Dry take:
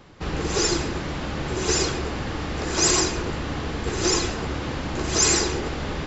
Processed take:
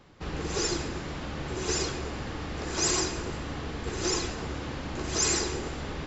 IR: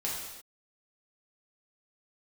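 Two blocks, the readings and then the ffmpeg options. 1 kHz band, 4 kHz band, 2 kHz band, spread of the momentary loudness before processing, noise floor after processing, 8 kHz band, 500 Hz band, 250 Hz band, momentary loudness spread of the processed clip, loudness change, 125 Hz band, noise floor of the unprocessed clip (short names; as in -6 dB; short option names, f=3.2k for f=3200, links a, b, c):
-7.0 dB, -7.0 dB, -7.0 dB, 11 LU, -38 dBFS, n/a, -6.5 dB, -7.0 dB, 11 LU, -7.0 dB, -6.5 dB, -31 dBFS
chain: -filter_complex "[0:a]asplit=2[a][b];[1:a]atrim=start_sample=2205,asetrate=27342,aresample=44100[c];[b][c]afir=irnorm=-1:irlink=0,volume=-23dB[d];[a][d]amix=inputs=2:normalize=0,volume=-7.5dB"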